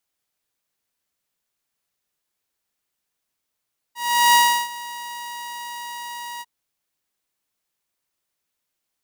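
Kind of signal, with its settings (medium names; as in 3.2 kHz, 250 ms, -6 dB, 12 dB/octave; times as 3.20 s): ADSR saw 954 Hz, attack 388 ms, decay 339 ms, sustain -20 dB, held 2.46 s, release 38 ms -8.5 dBFS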